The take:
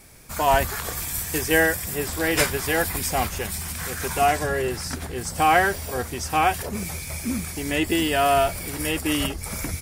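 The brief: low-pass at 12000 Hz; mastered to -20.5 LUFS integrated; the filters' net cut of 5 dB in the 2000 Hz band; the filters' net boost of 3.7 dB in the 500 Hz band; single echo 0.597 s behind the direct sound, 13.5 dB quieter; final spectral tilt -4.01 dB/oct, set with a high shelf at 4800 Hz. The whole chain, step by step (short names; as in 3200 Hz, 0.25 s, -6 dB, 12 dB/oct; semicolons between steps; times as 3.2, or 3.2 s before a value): LPF 12000 Hz; bell 500 Hz +5.5 dB; bell 2000 Hz -7.5 dB; high shelf 4800 Hz +3.5 dB; echo 0.597 s -13.5 dB; gain +2 dB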